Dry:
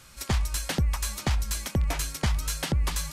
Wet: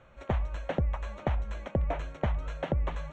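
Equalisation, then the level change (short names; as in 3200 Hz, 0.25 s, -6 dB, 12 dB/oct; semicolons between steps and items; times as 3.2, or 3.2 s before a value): running mean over 9 samples; air absorption 140 m; bell 580 Hz +11.5 dB 0.83 oct; -4.0 dB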